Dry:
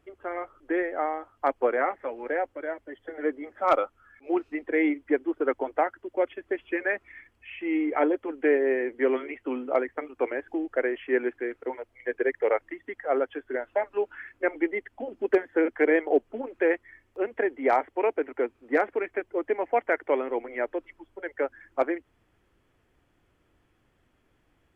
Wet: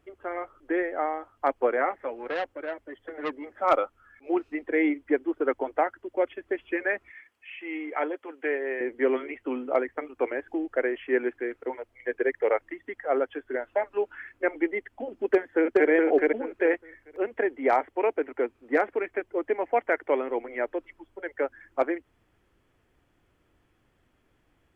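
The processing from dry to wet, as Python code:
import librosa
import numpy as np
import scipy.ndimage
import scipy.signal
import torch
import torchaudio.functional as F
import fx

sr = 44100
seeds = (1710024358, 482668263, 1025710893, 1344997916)

y = fx.transformer_sat(x, sr, knee_hz=1400.0, at=(2.14, 3.57))
y = fx.highpass(y, sr, hz=860.0, slope=6, at=(7.1, 8.81))
y = fx.echo_throw(y, sr, start_s=15.33, length_s=0.57, ms=420, feedback_pct=20, wet_db=-1.0)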